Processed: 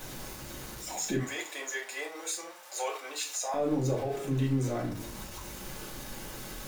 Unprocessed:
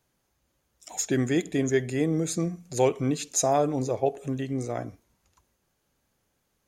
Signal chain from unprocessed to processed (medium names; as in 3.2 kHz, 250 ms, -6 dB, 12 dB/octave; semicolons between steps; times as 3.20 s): jump at every zero crossing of -36 dBFS; 1.19–3.54 s: high-pass 650 Hz 24 dB/octave; peak limiter -22.5 dBFS, peak gain reduction 10 dB; reverberation RT60 0.30 s, pre-delay 3 ms, DRR -4 dB; trim -5.5 dB